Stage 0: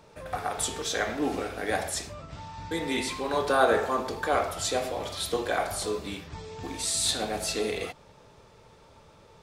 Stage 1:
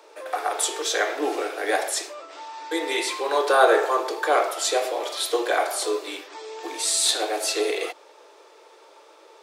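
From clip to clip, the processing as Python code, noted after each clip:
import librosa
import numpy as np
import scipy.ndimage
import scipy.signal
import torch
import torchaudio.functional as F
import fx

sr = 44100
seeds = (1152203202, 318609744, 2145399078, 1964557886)

y = scipy.signal.sosfilt(scipy.signal.butter(16, 310.0, 'highpass', fs=sr, output='sos'), x)
y = F.gain(torch.from_numpy(y), 5.5).numpy()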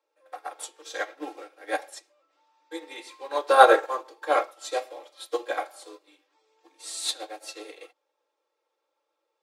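y = fx.peak_eq(x, sr, hz=14000.0, db=-2.5, octaves=1.8)
y = y + 0.63 * np.pad(y, (int(3.7 * sr / 1000.0), 0))[:len(y)]
y = fx.upward_expand(y, sr, threshold_db=-34.0, expansion=2.5)
y = F.gain(torch.from_numpy(y), 3.5).numpy()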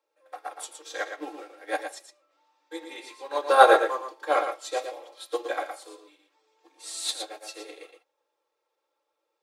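y = fx.quant_float(x, sr, bits=8)
y = y + 10.0 ** (-7.5 / 20.0) * np.pad(y, (int(115 * sr / 1000.0), 0))[:len(y)]
y = F.gain(torch.from_numpy(y), -1.0).numpy()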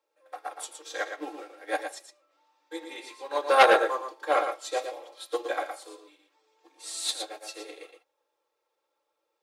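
y = fx.transformer_sat(x, sr, knee_hz=2000.0)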